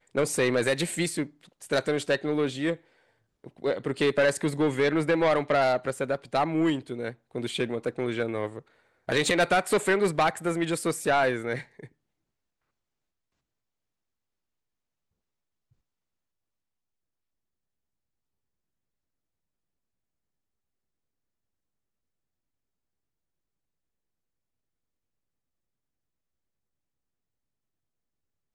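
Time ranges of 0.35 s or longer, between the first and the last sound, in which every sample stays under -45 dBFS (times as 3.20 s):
2.77–3.44 s
8.61–9.08 s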